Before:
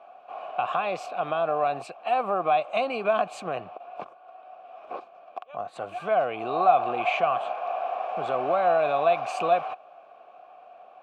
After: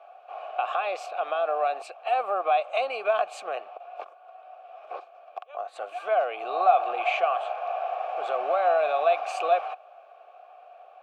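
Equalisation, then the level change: high-pass 460 Hz 24 dB/octave; band-stop 1 kHz, Q 7.9; 0.0 dB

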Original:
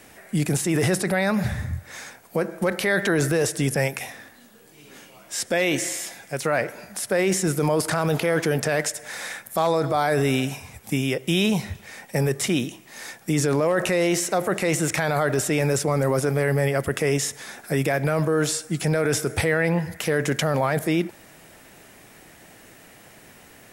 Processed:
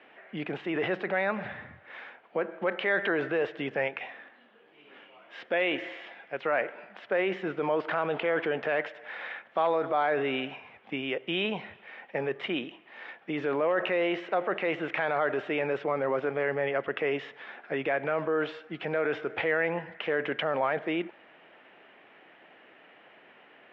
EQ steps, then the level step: high-pass 350 Hz 12 dB/octave; elliptic low-pass 3.1 kHz, stop band 80 dB; -3.5 dB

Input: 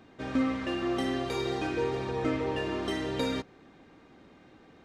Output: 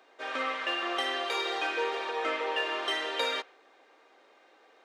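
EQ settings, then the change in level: dynamic bell 1.4 kHz, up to +6 dB, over -48 dBFS, Q 0.87; dynamic bell 3.1 kHz, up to +7 dB, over -51 dBFS, Q 1.7; high-pass 460 Hz 24 dB/octave; 0.0 dB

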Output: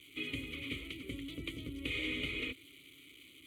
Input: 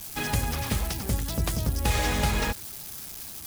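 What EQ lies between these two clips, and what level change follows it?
vowel filter i; static phaser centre 1.1 kHz, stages 8; +8.0 dB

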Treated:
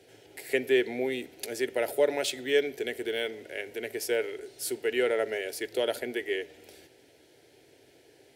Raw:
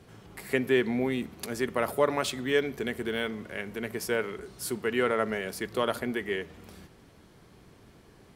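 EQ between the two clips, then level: high-pass 180 Hz 12 dB/octave; peaking EQ 2 kHz +3 dB 1.5 oct; static phaser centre 470 Hz, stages 4; +1.5 dB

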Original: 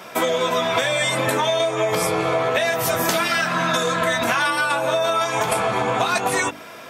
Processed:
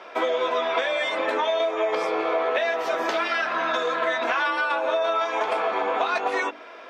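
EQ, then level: high-pass 320 Hz 24 dB/octave; distance through air 220 m; -2.0 dB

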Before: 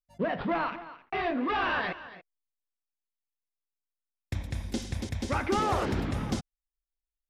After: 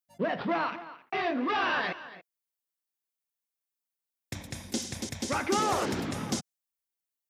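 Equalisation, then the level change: high-pass 150 Hz 12 dB/octave; treble shelf 8.4 kHz +9.5 dB; dynamic bell 6.4 kHz, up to +6 dB, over -56 dBFS, Q 1.2; 0.0 dB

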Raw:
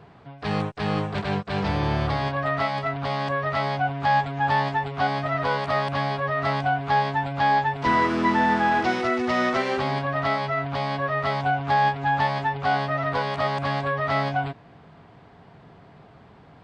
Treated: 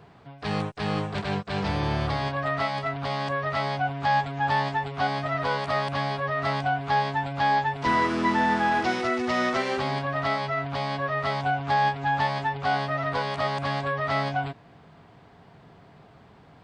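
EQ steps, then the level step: treble shelf 5.2 kHz +7 dB; -2.5 dB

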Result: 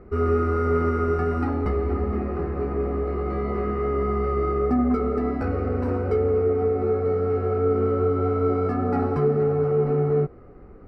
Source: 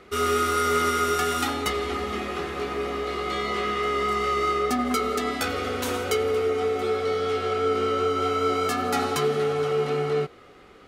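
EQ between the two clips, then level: boxcar filter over 13 samples; tilt EQ -4 dB/octave; -2.0 dB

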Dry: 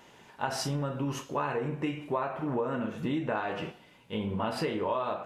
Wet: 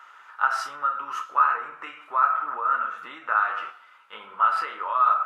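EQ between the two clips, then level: resonant high-pass 1.3 kHz, resonance Q 16; treble shelf 2 kHz -10.5 dB; +4.5 dB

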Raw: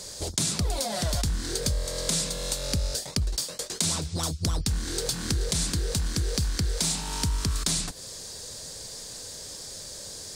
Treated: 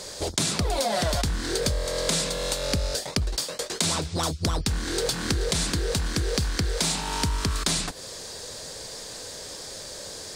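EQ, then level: tone controls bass -7 dB, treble -8 dB; +7.0 dB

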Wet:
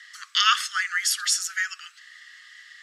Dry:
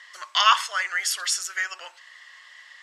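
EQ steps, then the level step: rippled Chebyshev high-pass 1.2 kHz, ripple 3 dB; treble shelf 9.7 kHz +6 dB; +1.5 dB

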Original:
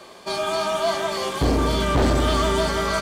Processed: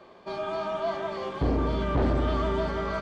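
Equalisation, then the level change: tape spacing loss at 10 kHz 30 dB; -4.5 dB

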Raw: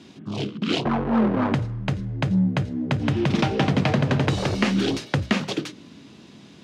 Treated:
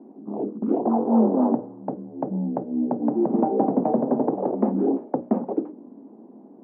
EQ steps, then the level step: elliptic band-pass 230–840 Hz, stop band 70 dB; +4.0 dB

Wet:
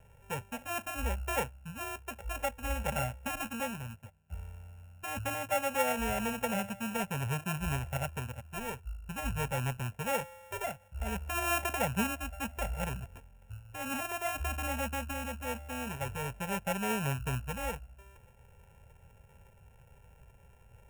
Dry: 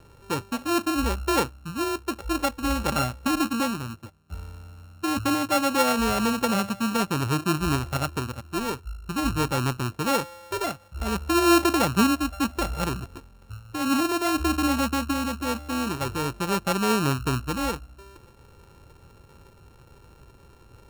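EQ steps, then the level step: static phaser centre 1.2 kHz, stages 6; -4.5 dB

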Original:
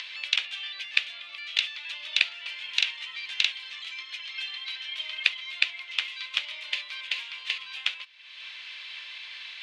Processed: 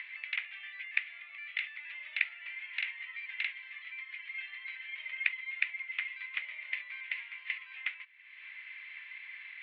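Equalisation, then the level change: bass shelf 350 Hz -10 dB; dynamic bell 180 Hz, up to -5 dB, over -58 dBFS, Q 0.76; four-pole ladder low-pass 2.2 kHz, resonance 75%; 0.0 dB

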